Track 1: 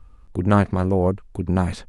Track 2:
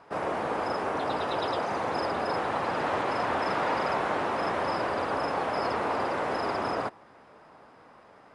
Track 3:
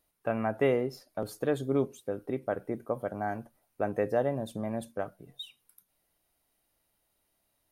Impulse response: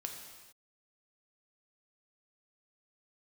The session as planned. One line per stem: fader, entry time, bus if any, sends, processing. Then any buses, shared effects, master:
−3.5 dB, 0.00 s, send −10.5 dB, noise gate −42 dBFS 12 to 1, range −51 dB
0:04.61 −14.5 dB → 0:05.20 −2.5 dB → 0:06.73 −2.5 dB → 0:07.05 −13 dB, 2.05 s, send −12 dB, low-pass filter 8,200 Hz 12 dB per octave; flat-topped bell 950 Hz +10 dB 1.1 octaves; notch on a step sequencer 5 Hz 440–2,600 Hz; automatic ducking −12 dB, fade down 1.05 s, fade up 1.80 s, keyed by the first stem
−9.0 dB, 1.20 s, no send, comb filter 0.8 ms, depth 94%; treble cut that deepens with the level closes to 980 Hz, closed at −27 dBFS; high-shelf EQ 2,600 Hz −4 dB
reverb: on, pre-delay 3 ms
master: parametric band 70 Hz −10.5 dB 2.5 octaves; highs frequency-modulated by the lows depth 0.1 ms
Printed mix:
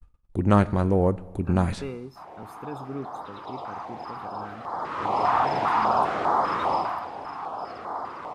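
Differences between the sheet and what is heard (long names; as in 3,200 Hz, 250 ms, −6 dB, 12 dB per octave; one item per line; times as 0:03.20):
stem 2: send −12 dB → −4.5 dB
stem 3: missing treble cut that deepens with the level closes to 980 Hz, closed at −27 dBFS
master: missing parametric band 70 Hz −10.5 dB 2.5 octaves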